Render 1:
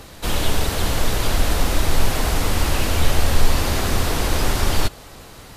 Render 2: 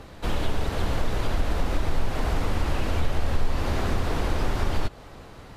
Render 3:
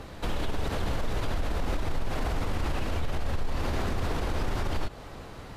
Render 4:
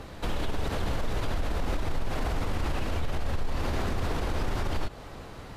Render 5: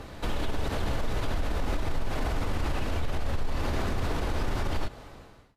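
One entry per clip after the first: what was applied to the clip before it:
low-pass 1.8 kHz 6 dB/octave; compression 2:1, threshold -19 dBFS, peak gain reduction 7 dB; trim -2 dB
peak limiter -22 dBFS, peak gain reduction 10.5 dB; trim +1.5 dB
no audible change
fade out at the end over 0.72 s; on a send at -13.5 dB: reverberation RT60 0.20 s, pre-delay 3 ms

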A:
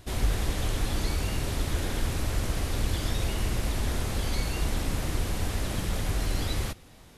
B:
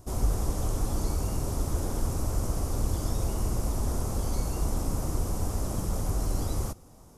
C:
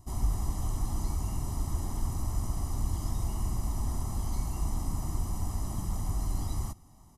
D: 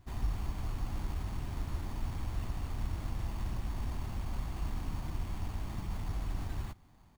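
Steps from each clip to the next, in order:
high-order bell 2.6 kHz -14.5 dB
comb 1 ms, depth 76%; trim -7 dB
careless resampling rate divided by 8×, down none, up hold; trim -5 dB

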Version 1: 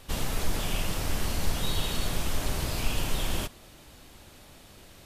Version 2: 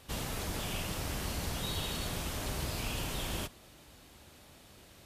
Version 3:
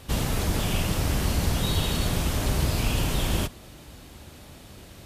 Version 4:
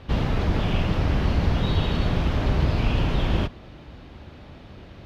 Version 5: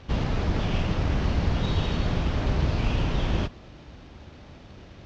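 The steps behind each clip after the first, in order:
high-pass 43 Hz; trim -4.5 dB
bass shelf 330 Hz +6.5 dB; trim +7.5 dB
distance through air 270 m; trim +3.5 dB
CVSD coder 32 kbps; trim -2.5 dB

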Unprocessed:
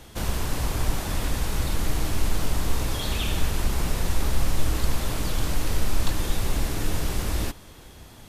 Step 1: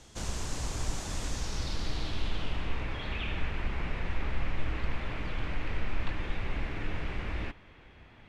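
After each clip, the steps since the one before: low-pass sweep 7 kHz -> 2.3 kHz, 1.25–2.86 s; trim -8.5 dB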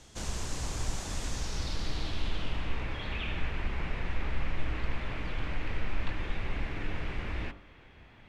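de-hum 49.3 Hz, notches 30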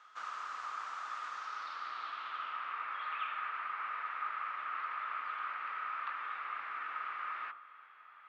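ladder band-pass 1.3 kHz, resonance 85%; trim +9 dB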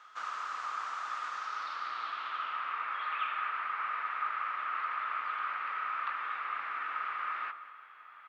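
delay 193 ms -16.5 dB; trim +4 dB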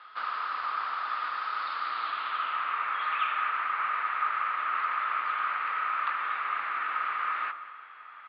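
steep low-pass 4.9 kHz 96 dB/octave; trim +5.5 dB

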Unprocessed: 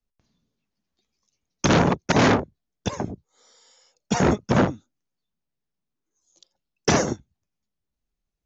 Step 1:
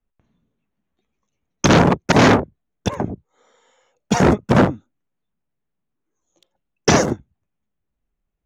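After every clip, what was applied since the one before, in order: local Wiener filter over 9 samples; trim +5.5 dB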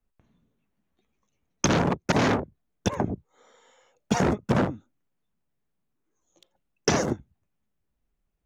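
compression 4:1, threshold -21 dBFS, peak gain reduction 11 dB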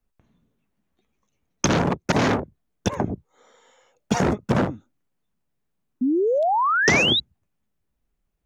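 painted sound rise, 6.01–7.20 s, 240–4000 Hz -22 dBFS; trim +2 dB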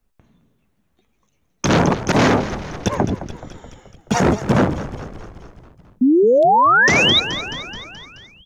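frequency-shifting echo 214 ms, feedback 61%, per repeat -50 Hz, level -14.5 dB; peak limiter -13.5 dBFS, peak gain reduction 10 dB; trim +7.5 dB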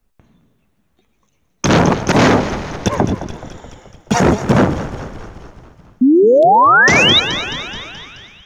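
thinning echo 120 ms, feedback 73%, high-pass 260 Hz, level -17 dB; trim +3.5 dB

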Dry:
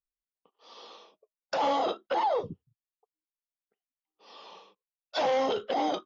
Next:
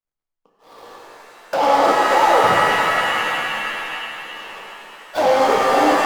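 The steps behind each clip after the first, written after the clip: median filter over 15 samples; level rider gain up to 4.5 dB; pitch-shifted reverb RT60 3.3 s, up +7 st, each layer -2 dB, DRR -2 dB; trim +5 dB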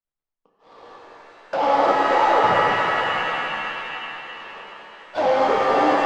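distance through air 130 m; echo whose repeats swap between lows and highs 208 ms, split 1.3 kHz, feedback 56%, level -7 dB; trim -3 dB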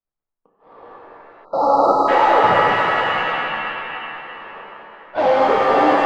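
level-controlled noise filter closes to 1.5 kHz, open at -15.5 dBFS; spectral selection erased 1.44–2.08 s, 1.4–3.8 kHz; dynamic bell 6.4 kHz, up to -6 dB, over -45 dBFS, Q 1; trim +3.5 dB

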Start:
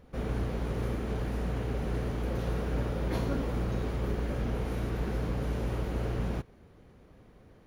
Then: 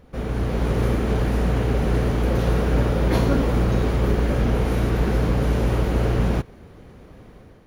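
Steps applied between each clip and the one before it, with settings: level rider gain up to 6 dB; trim +5.5 dB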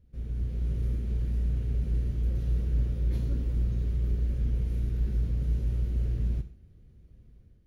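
amplifier tone stack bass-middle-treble 10-0-1; gated-style reverb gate 170 ms falling, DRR 6.5 dB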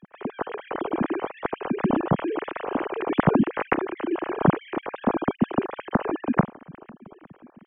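formants replaced by sine waves; trim +1.5 dB

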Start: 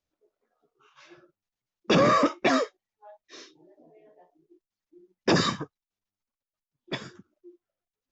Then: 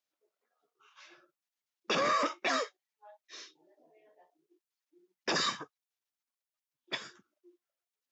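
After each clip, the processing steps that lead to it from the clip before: high-pass 1.2 kHz 6 dB/octave; peak limiter -20.5 dBFS, peak gain reduction 6 dB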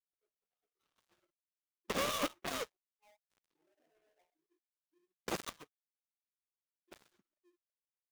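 dead-time distortion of 0.3 ms; upward expansion 1.5:1, over -52 dBFS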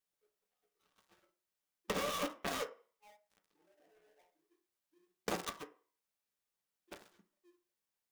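compression 6:1, threshold -39 dBFS, peak gain reduction 10.5 dB; on a send at -4.5 dB: reverberation RT60 0.45 s, pre-delay 3 ms; on the sum: trim +5 dB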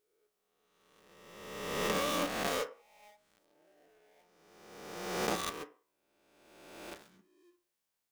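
reverse spectral sustain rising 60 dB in 1.50 s; trim +1 dB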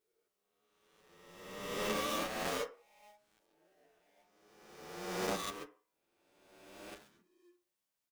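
endless flanger 8.7 ms +0.8 Hz

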